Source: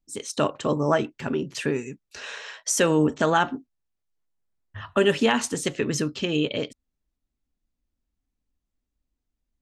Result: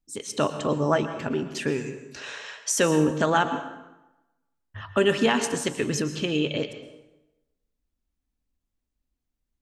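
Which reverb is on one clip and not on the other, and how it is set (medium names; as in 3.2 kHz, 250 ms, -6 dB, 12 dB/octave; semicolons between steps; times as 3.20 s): plate-style reverb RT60 1 s, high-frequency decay 0.75×, pre-delay 100 ms, DRR 9.5 dB; trim -1 dB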